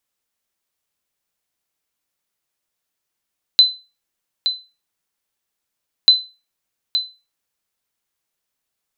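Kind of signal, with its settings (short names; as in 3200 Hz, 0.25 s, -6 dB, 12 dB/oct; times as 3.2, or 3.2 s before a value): sonar ping 4030 Hz, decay 0.29 s, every 2.49 s, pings 2, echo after 0.87 s, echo -9.5 dB -2 dBFS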